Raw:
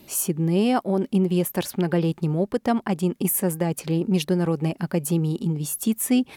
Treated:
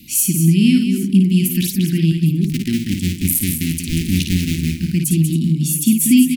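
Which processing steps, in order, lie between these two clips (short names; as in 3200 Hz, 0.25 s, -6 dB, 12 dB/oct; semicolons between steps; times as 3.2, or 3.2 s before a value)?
2.44–4.8 cycle switcher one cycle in 2, muted; elliptic band-stop 270–2300 Hz, stop band 50 dB; tapped delay 55/189/273/806 ms -5.5/-7.5/-15/-18 dB; gain +8.5 dB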